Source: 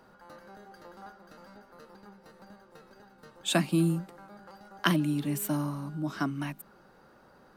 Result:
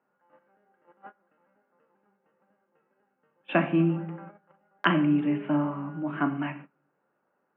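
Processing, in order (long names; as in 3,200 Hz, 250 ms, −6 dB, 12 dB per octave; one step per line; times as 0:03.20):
Butterworth low-pass 2,900 Hz 72 dB per octave
rectangular room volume 120 cubic metres, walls mixed, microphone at 0.37 metres
noise gate −44 dBFS, range −21 dB
high-pass filter 200 Hz 12 dB per octave
level +3.5 dB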